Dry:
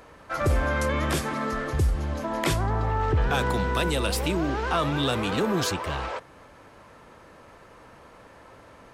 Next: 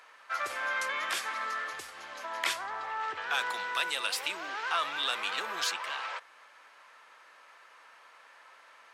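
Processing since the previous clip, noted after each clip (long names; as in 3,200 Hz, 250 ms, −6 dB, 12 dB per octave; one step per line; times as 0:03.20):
high-pass filter 1,400 Hz 12 dB per octave
high-shelf EQ 6,400 Hz −9.5 dB
level +1.5 dB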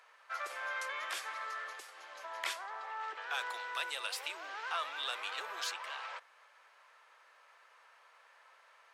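four-pole ladder high-pass 340 Hz, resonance 20%
level −2 dB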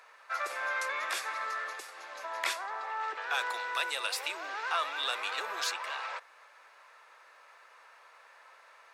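low-shelf EQ 210 Hz +8 dB
notch filter 3,100 Hz, Q 12
level +5.5 dB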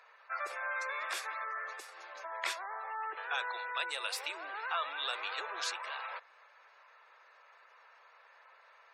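gate on every frequency bin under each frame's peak −25 dB strong
level −3.5 dB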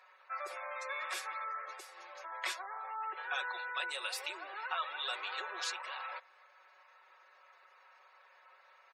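comb filter 5.4 ms, depth 78%
level −3.5 dB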